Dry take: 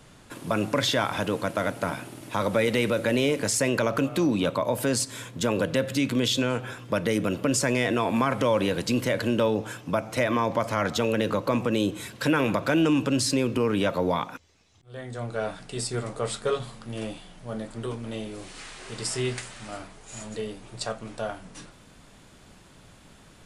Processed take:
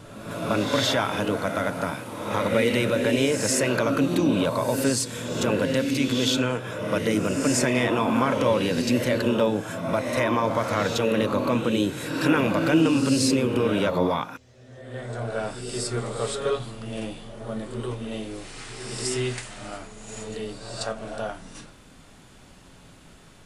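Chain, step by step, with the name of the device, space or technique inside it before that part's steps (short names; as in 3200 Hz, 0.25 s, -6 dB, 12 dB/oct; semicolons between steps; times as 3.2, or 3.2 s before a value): reverse reverb (reverse; reverb RT60 1.3 s, pre-delay 18 ms, DRR 3 dB; reverse)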